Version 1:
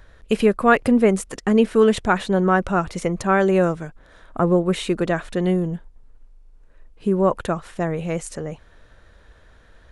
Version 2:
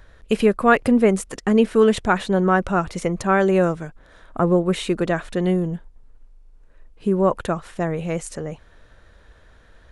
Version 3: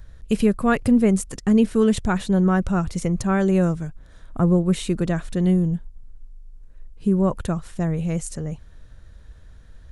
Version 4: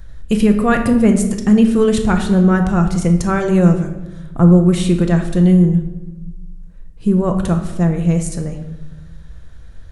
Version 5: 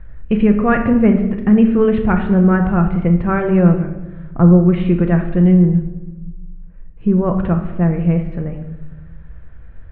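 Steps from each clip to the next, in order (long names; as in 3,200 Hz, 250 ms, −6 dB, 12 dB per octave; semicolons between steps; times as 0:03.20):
no processing that can be heard
bass and treble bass +14 dB, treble +9 dB; level −7 dB
convolution reverb RT60 1.0 s, pre-delay 6 ms, DRR 4.5 dB; level +4.5 dB
Butterworth low-pass 2,600 Hz 36 dB per octave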